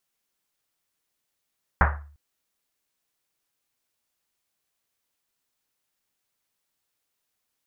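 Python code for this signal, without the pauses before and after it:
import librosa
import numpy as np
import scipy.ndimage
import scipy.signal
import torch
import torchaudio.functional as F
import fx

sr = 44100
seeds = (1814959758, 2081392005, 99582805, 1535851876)

y = fx.risset_drum(sr, seeds[0], length_s=0.35, hz=73.0, decay_s=0.57, noise_hz=1200.0, noise_width_hz=1200.0, noise_pct=45)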